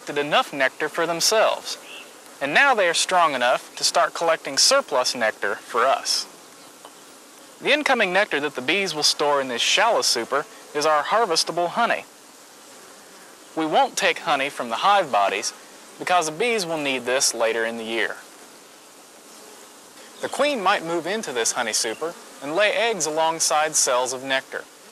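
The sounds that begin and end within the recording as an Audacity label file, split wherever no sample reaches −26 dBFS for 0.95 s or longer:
13.570000	18.130000	sound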